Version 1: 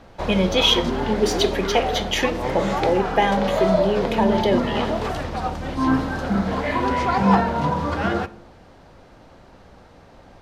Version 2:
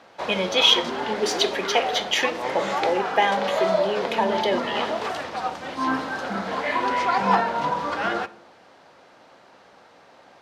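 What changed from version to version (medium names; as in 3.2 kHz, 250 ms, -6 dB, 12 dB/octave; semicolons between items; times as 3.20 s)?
master: add frequency weighting A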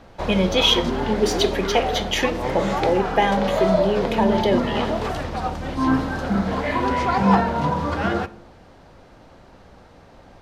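master: remove frequency weighting A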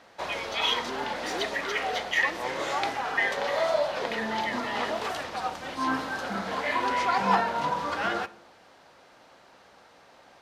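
speech: add ladder high-pass 1.8 kHz, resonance 85%; background: add high-pass 1.1 kHz 6 dB/octave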